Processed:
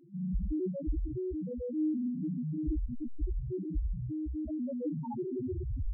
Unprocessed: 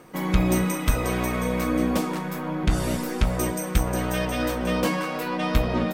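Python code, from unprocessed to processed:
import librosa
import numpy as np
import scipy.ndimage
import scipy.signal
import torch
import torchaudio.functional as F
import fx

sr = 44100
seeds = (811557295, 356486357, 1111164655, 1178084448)

p1 = fx.tape_stop_end(x, sr, length_s=1.12)
p2 = fx.over_compress(p1, sr, threshold_db=-30.0, ratio=-1.0)
p3 = p1 + F.gain(torch.from_numpy(p2), 2.0).numpy()
p4 = fx.dispersion(p3, sr, late='highs', ms=100.0, hz=1000.0)
p5 = p4 + fx.echo_feedback(p4, sr, ms=356, feedback_pct=38, wet_db=-20, dry=0)
p6 = fx.rev_gated(p5, sr, seeds[0], gate_ms=160, shape='rising', drr_db=0.5)
p7 = fx.spec_topn(p6, sr, count=1)
y = F.gain(torch.from_numpy(p7), -6.0).numpy()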